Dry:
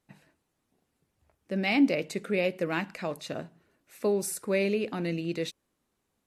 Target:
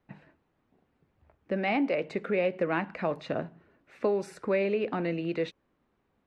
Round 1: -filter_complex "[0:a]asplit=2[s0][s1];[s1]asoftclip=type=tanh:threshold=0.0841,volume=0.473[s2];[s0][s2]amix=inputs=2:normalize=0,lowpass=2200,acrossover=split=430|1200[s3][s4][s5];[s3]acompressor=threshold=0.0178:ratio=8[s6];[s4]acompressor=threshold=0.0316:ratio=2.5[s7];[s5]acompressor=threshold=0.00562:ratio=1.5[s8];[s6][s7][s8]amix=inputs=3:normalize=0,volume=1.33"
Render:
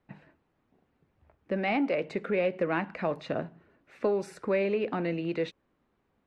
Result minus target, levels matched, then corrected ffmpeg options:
saturation: distortion +14 dB
-filter_complex "[0:a]asplit=2[s0][s1];[s1]asoftclip=type=tanh:threshold=0.266,volume=0.473[s2];[s0][s2]amix=inputs=2:normalize=0,lowpass=2200,acrossover=split=430|1200[s3][s4][s5];[s3]acompressor=threshold=0.0178:ratio=8[s6];[s4]acompressor=threshold=0.0316:ratio=2.5[s7];[s5]acompressor=threshold=0.00562:ratio=1.5[s8];[s6][s7][s8]amix=inputs=3:normalize=0,volume=1.33"

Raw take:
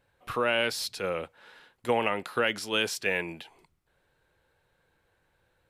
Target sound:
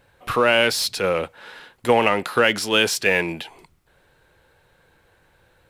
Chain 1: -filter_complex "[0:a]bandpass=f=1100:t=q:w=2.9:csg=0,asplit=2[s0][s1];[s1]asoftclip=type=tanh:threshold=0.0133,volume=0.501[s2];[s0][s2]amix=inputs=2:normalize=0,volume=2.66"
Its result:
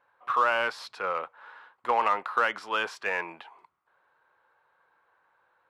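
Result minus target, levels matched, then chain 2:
1 kHz band +6.5 dB
-filter_complex "[0:a]asplit=2[s0][s1];[s1]asoftclip=type=tanh:threshold=0.0133,volume=0.501[s2];[s0][s2]amix=inputs=2:normalize=0,volume=2.66"

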